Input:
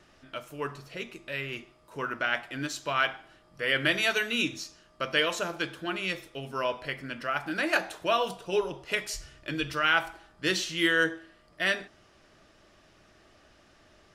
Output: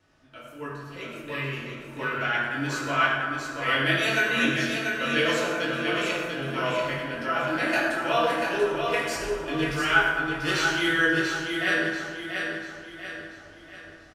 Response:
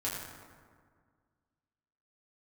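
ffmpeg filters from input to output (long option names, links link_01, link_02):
-filter_complex "[0:a]aecho=1:1:688|1376|2064|2752|3440:0.562|0.231|0.0945|0.0388|0.0159,dynaudnorm=framelen=160:gausssize=11:maxgain=7dB[link_01];[1:a]atrim=start_sample=2205[link_02];[link_01][link_02]afir=irnorm=-1:irlink=0,volume=-8dB"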